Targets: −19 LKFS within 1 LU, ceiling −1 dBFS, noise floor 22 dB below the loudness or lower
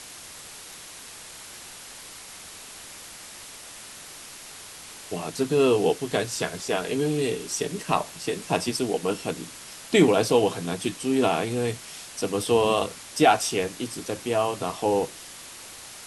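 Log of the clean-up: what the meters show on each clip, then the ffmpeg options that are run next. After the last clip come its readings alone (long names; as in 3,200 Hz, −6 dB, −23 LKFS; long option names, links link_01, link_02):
background noise floor −43 dBFS; target noise floor −47 dBFS; integrated loudness −25.0 LKFS; sample peak −5.5 dBFS; target loudness −19.0 LKFS
→ -af "afftdn=noise_reduction=6:noise_floor=-43"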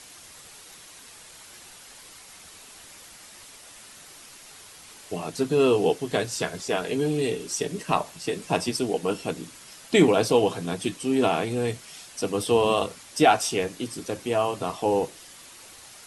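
background noise floor −48 dBFS; integrated loudness −25.0 LKFS; sample peak −5.5 dBFS; target loudness −19.0 LKFS
→ -af "volume=6dB,alimiter=limit=-1dB:level=0:latency=1"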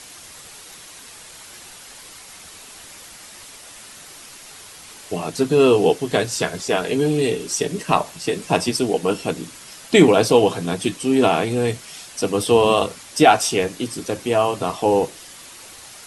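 integrated loudness −19.5 LKFS; sample peak −1.0 dBFS; background noise floor −42 dBFS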